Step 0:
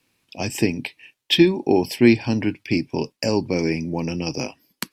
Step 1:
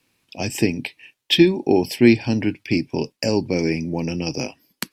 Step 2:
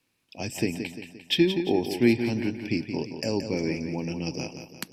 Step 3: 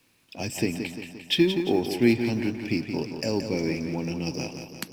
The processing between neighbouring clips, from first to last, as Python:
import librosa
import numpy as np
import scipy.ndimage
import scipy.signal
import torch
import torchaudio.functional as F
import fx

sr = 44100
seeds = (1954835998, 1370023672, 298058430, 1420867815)

y1 = fx.dynamic_eq(x, sr, hz=1100.0, q=2.5, threshold_db=-43.0, ratio=4.0, max_db=-6)
y1 = y1 * 10.0 ** (1.0 / 20.0)
y2 = fx.echo_feedback(y1, sr, ms=174, feedback_pct=47, wet_db=-8.5)
y2 = y2 * 10.0 ** (-7.5 / 20.0)
y3 = fx.law_mismatch(y2, sr, coded='mu')